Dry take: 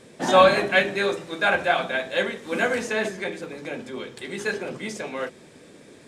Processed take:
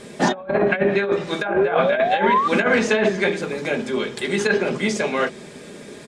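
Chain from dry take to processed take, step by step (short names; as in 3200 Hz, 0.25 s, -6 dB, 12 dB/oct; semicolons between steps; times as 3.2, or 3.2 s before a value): painted sound rise, 1.48–2.48, 330–1200 Hz -27 dBFS; comb 4.9 ms, depth 40%; treble ducked by the level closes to 1100 Hz, closed at -15 dBFS; negative-ratio compressor -24 dBFS, ratio -0.5; gain +6.5 dB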